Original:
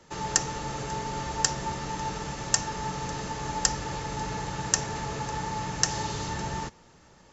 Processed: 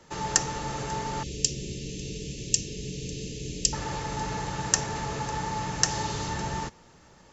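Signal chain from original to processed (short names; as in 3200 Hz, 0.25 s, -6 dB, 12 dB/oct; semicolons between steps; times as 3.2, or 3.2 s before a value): 1.23–3.73 elliptic band-stop 440–2600 Hz, stop band 80 dB; gain +1 dB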